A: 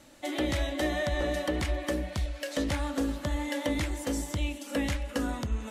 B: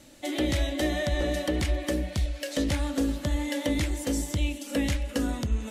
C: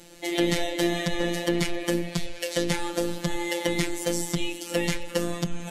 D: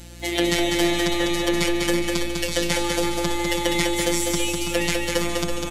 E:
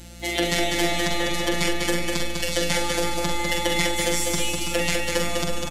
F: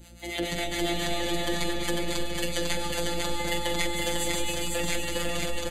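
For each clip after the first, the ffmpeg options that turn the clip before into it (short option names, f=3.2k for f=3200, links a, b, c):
-af "equalizer=f=1.1k:t=o:w=1.6:g=-7,volume=4dB"
-af "afftfilt=real='hypot(re,im)*cos(PI*b)':imag='0':win_size=1024:overlap=0.75,volume=7.5dB"
-af "lowshelf=f=370:g=-8,aeval=exprs='val(0)+0.00501*(sin(2*PI*60*n/s)+sin(2*PI*2*60*n/s)/2+sin(2*PI*3*60*n/s)/3+sin(2*PI*4*60*n/s)/4+sin(2*PI*5*60*n/s)/5)':c=same,aecho=1:1:200|330|414.5|469.4|505.1:0.631|0.398|0.251|0.158|0.1,volume=5dB"
-filter_complex "[0:a]asplit=2[a][b];[b]adelay=45,volume=-5.5dB[c];[a][c]amix=inputs=2:normalize=0,volume=-1dB"
-filter_complex "[0:a]acrossover=split=570[a][b];[a]aeval=exprs='val(0)*(1-0.7/2+0.7/2*cos(2*PI*7.2*n/s))':c=same[c];[b]aeval=exprs='val(0)*(1-0.7/2-0.7/2*cos(2*PI*7.2*n/s))':c=same[d];[c][d]amix=inputs=2:normalize=0,asuperstop=centerf=5400:order=12:qfactor=6.8,aecho=1:1:499:0.708,volume=-4dB"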